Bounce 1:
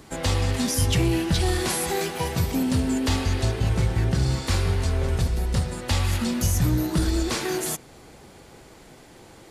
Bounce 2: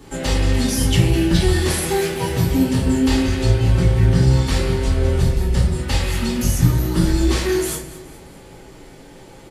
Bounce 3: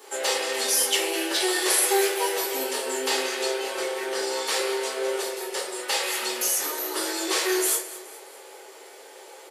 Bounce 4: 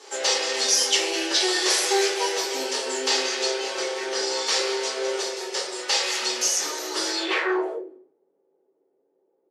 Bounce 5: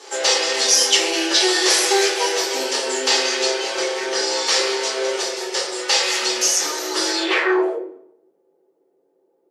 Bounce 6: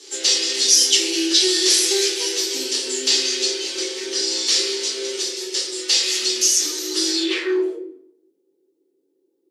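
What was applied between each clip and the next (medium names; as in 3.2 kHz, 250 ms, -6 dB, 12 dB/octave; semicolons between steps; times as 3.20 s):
feedback delay 209 ms, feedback 48%, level -16.5 dB; reverberation RT60 0.45 s, pre-delay 3 ms, DRR -4.5 dB; trim -4 dB
elliptic high-pass 410 Hz, stop band 70 dB; treble shelf 7.2 kHz +7.5 dB
low-pass sweep 5.8 kHz -> 130 Hz, 7.11–8.14 s
simulated room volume 2500 m³, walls furnished, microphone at 0.79 m; trim +5 dB
FFT filter 170 Hz 0 dB, 320 Hz +12 dB, 670 Hz -13 dB, 1.5 kHz -4 dB, 3.7 kHz +10 dB; trim -8.5 dB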